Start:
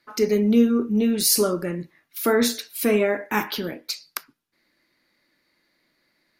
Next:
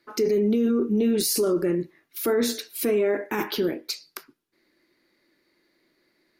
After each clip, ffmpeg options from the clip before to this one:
ffmpeg -i in.wav -af "equalizer=frequency=370:width=2.2:gain=11,alimiter=limit=-14dB:level=0:latency=1:release=18,volume=-1.5dB" out.wav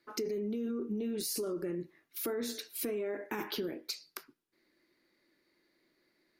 ffmpeg -i in.wav -af "acompressor=threshold=-27dB:ratio=6,volume=-6dB" out.wav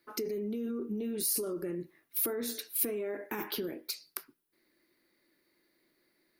ffmpeg -i in.wav -af "aexciter=amount=3.9:drive=1.3:freq=9200" out.wav

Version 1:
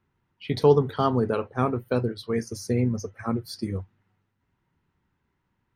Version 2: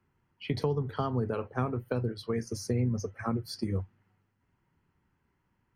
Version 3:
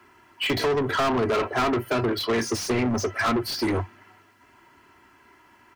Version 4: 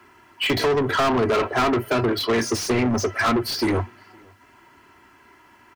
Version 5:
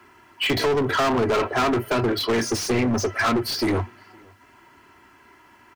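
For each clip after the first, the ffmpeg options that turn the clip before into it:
ffmpeg -i in.wav -filter_complex "[0:a]bandreject=frequency=3700:width=6.1,acrossover=split=120[link_01][link_02];[link_02]acompressor=threshold=-28dB:ratio=10[link_03];[link_01][link_03]amix=inputs=2:normalize=0,highshelf=frequency=7600:gain=-5.5" out.wav
ffmpeg -i in.wav -filter_complex "[0:a]aecho=1:1:3:0.67,asplit=2[link_01][link_02];[link_02]highpass=frequency=720:poles=1,volume=30dB,asoftclip=type=tanh:threshold=-15.5dB[link_03];[link_01][link_03]amix=inputs=2:normalize=0,lowpass=frequency=7100:poles=1,volume=-6dB,acrossover=split=140|3400[link_04][link_05][link_06];[link_06]asoftclip=type=hard:threshold=-33dB[link_07];[link_04][link_05][link_07]amix=inputs=3:normalize=0" out.wav
ffmpeg -i in.wav -filter_complex "[0:a]asplit=2[link_01][link_02];[link_02]adelay=513.1,volume=-29dB,highshelf=frequency=4000:gain=-11.5[link_03];[link_01][link_03]amix=inputs=2:normalize=0,volume=3dB" out.wav
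ffmpeg -i in.wav -af "aeval=exprs='clip(val(0),-1,0.119)':channel_layout=same" out.wav

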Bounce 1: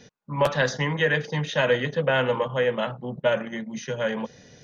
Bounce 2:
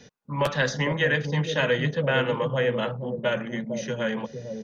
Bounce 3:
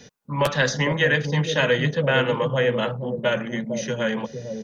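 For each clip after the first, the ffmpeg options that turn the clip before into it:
ffmpeg -i in.wav -filter_complex "[0:a]acrossover=split=550|910[link_01][link_02][link_03];[link_01]aecho=1:1:249|455:0.112|0.668[link_04];[link_02]acompressor=threshold=-39dB:ratio=6[link_05];[link_04][link_05][link_03]amix=inputs=3:normalize=0" out.wav
ffmpeg -i in.wav -af "highshelf=frequency=6100:gain=6,volume=3dB" out.wav

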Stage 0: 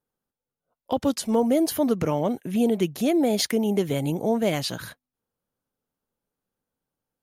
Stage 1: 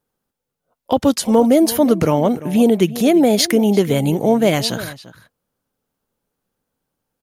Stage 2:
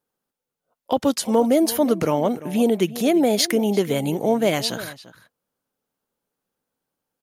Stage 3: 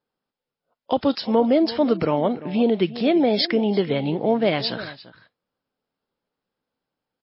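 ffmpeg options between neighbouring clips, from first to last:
ffmpeg -i in.wav -filter_complex "[0:a]asplit=2[link_01][link_02];[link_02]adelay=344,volume=-16dB,highshelf=frequency=4000:gain=-7.74[link_03];[link_01][link_03]amix=inputs=2:normalize=0,volume=8.5dB" out.wav
ffmpeg -i in.wav -af "lowshelf=frequency=130:gain=-11.5,volume=-3.5dB" out.wav
ffmpeg -i in.wav -ar 12000 -c:a libmp3lame -b:a 24k out.mp3

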